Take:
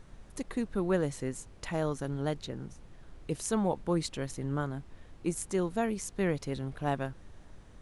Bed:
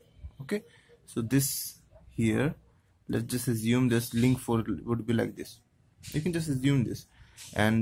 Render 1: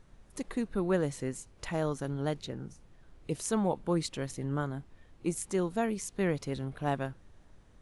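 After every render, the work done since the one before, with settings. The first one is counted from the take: noise print and reduce 6 dB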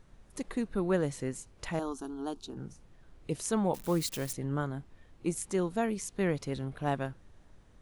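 1.79–2.57 s: static phaser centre 540 Hz, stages 6; 3.74–4.33 s: zero-crossing glitches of -32.5 dBFS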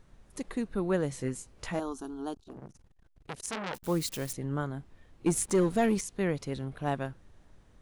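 1.10–1.80 s: doubling 16 ms -6 dB; 2.34–3.84 s: transformer saturation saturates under 3 kHz; 5.26–6.01 s: waveshaping leveller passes 2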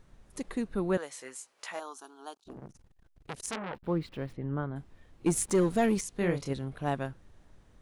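0.97–2.46 s: high-pass 760 Hz; 3.56–4.76 s: distance through air 420 m; 6.12–6.53 s: doubling 29 ms -5 dB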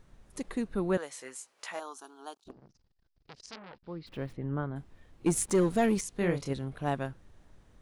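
2.51–4.07 s: four-pole ladder low-pass 5.4 kHz, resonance 65%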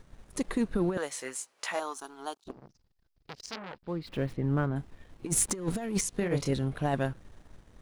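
compressor with a negative ratio -30 dBFS, ratio -0.5; waveshaping leveller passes 1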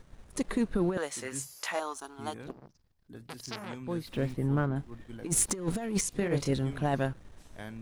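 add bed -18 dB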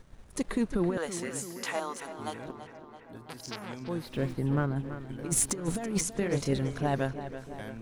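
tape echo 332 ms, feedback 70%, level -10 dB, low-pass 3.6 kHz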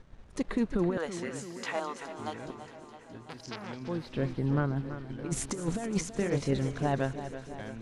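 distance through air 86 m; feedback echo behind a high-pass 209 ms, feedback 78%, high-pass 2.9 kHz, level -12.5 dB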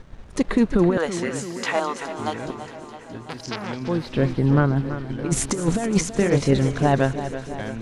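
trim +10.5 dB

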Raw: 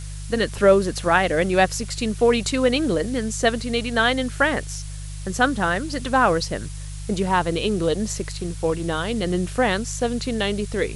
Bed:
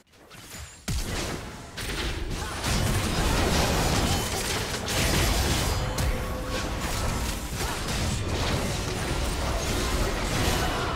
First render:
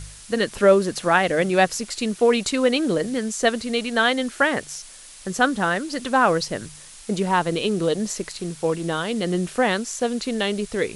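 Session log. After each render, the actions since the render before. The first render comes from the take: de-hum 50 Hz, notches 3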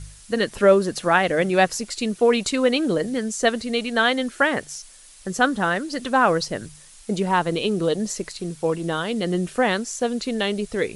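noise reduction 6 dB, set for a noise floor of -43 dBFS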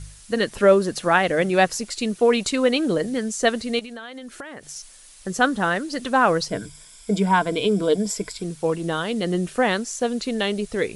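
3.79–4.76 s: compression 20:1, threshold -32 dBFS; 6.49–8.43 s: rippled EQ curve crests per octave 1.7, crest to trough 11 dB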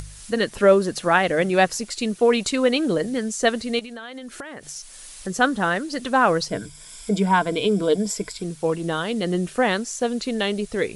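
upward compressor, threshold -32 dBFS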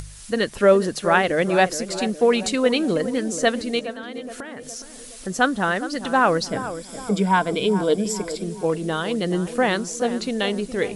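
tape echo 417 ms, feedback 57%, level -10 dB, low-pass 1.2 kHz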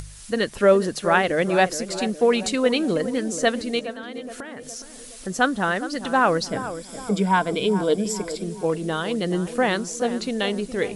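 trim -1 dB

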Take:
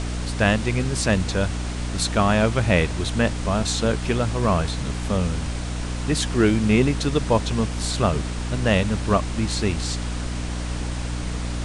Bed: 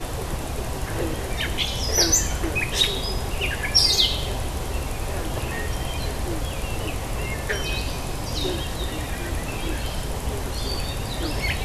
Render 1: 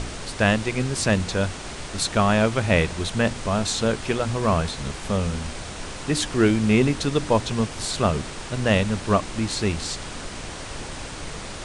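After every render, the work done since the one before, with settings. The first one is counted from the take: de-hum 60 Hz, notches 5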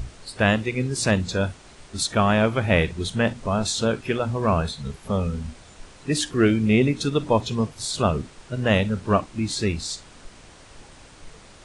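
noise print and reduce 13 dB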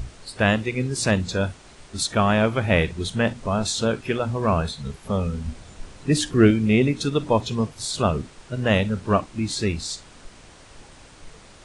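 5.46–6.51 s: bass shelf 330 Hz +6.5 dB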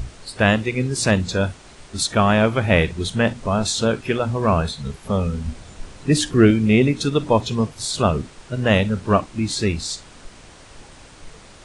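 trim +3 dB; peak limiter -2 dBFS, peak gain reduction 1.5 dB

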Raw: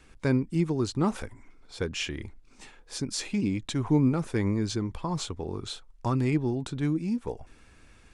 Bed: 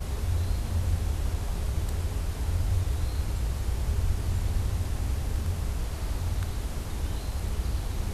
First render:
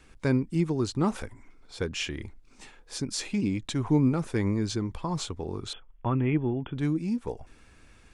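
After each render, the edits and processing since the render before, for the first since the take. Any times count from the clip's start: 5.73–6.78 s: brick-wall FIR low-pass 3.5 kHz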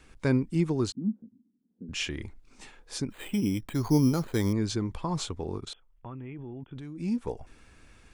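0.92–1.89 s: Butterworth band-pass 220 Hz, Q 2.9; 3.10–4.53 s: careless resampling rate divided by 8×, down filtered, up hold; 5.58–7.00 s: level held to a coarse grid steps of 20 dB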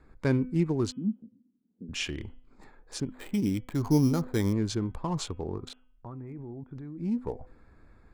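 local Wiener filter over 15 samples; de-hum 252.2 Hz, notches 13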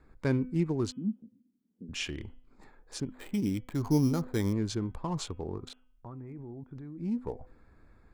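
trim -2.5 dB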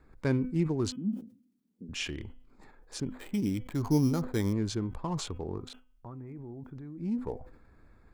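decay stretcher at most 130 dB/s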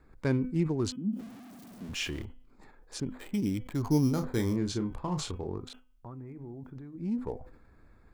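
1.19–2.25 s: jump at every zero crossing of -43.5 dBFS; 4.13–5.50 s: doubling 33 ms -7.5 dB; 6.14–6.96 s: de-hum 149.2 Hz, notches 27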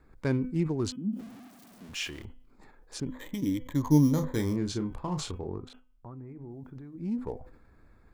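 1.48–2.25 s: bass shelf 440 Hz -8 dB; 3.07–4.36 s: rippled EQ curve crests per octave 1.1, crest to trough 11 dB; 5.39–6.51 s: treble shelf 2.9 kHz -8.5 dB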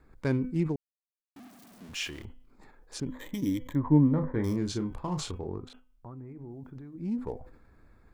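0.76–1.36 s: mute; 3.75–4.44 s: low-pass 2 kHz 24 dB/octave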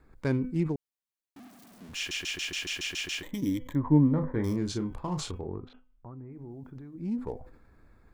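1.97 s: stutter in place 0.14 s, 9 plays; 5.41–6.33 s: distance through air 250 m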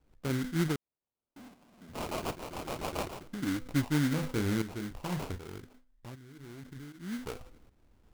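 sample-rate reducer 1.8 kHz, jitter 20%; tremolo saw up 1.3 Hz, depth 70%

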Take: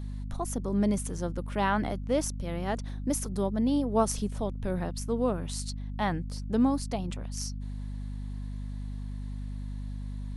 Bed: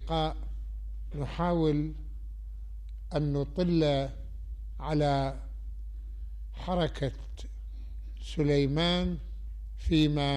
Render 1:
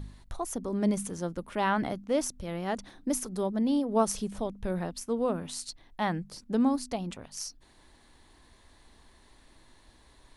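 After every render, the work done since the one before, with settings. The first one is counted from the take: de-hum 50 Hz, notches 5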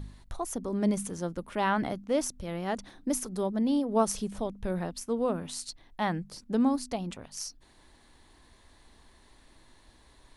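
no audible change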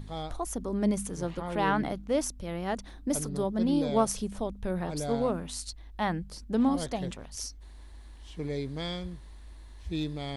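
add bed -8 dB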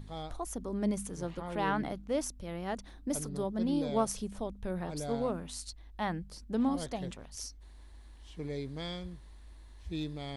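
trim -4.5 dB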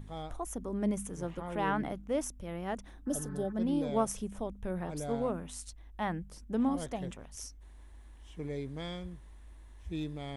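3.09–3.50 s: spectral replace 850–2600 Hz after; peaking EQ 4.4 kHz -11.5 dB 0.45 oct

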